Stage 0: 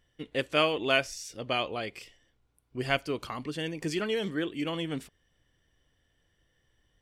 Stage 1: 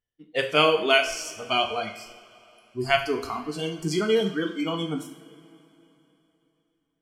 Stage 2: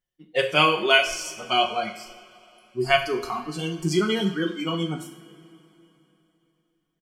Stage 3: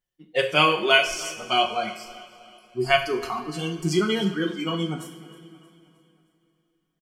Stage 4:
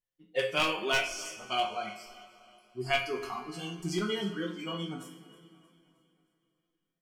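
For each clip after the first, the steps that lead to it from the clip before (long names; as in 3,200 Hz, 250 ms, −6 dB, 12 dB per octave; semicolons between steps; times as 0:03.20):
noise reduction from a noise print of the clip's start 26 dB; coupled-rooms reverb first 0.55 s, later 3.4 s, from −19 dB, DRR 3.5 dB; level +5 dB
comb filter 5.5 ms, depth 72%
repeating echo 313 ms, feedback 47%, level −19.5 dB
wavefolder on the positive side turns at −12 dBFS; resonators tuned to a chord F2 minor, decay 0.25 s; level +3 dB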